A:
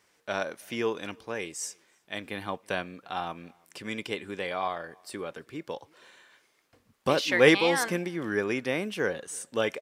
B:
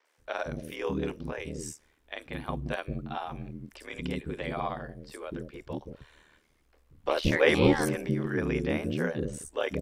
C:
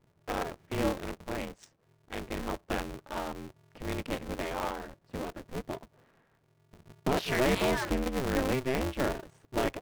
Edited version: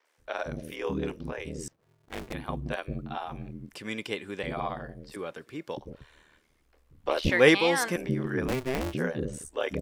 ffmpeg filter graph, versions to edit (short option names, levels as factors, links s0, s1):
-filter_complex "[2:a]asplit=2[s0][s1];[0:a]asplit=3[s2][s3][s4];[1:a]asplit=6[s5][s6][s7][s8][s9][s10];[s5]atrim=end=1.682[s11];[s0]atrim=start=1.678:end=2.332[s12];[s6]atrim=start=2.328:end=3.752[s13];[s2]atrim=start=3.748:end=4.432[s14];[s7]atrim=start=4.428:end=5.162[s15];[s3]atrim=start=5.158:end=5.772[s16];[s8]atrim=start=5.768:end=7.302[s17];[s4]atrim=start=7.298:end=7.962[s18];[s9]atrim=start=7.958:end=8.482[s19];[s1]atrim=start=8.478:end=8.942[s20];[s10]atrim=start=8.938[s21];[s11][s12]acrossfade=d=0.004:c1=hsin:c2=hsin[s22];[s22][s13]acrossfade=d=0.004:c1=hsin:c2=hsin[s23];[s23][s14]acrossfade=d=0.004:c1=hsin:c2=hsin[s24];[s24][s15]acrossfade=d=0.004:c1=hsin:c2=hsin[s25];[s25][s16]acrossfade=d=0.004:c1=hsin:c2=hsin[s26];[s26][s17]acrossfade=d=0.004:c1=hsin:c2=hsin[s27];[s27][s18]acrossfade=d=0.004:c1=hsin:c2=hsin[s28];[s28][s19]acrossfade=d=0.004:c1=hsin:c2=hsin[s29];[s29][s20]acrossfade=d=0.004:c1=hsin:c2=hsin[s30];[s30][s21]acrossfade=d=0.004:c1=hsin:c2=hsin"